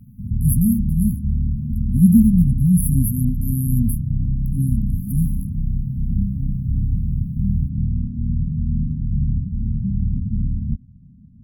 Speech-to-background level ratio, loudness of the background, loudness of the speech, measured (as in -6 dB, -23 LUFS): 4.5 dB, -24.0 LUFS, -19.5 LUFS